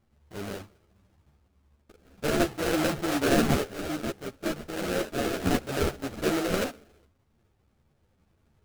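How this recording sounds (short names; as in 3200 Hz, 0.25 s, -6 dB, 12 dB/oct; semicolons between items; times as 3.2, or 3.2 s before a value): random-step tremolo 1.1 Hz, depth 55%; aliases and images of a low sample rate 1000 Hz, jitter 20%; a shimmering, thickened sound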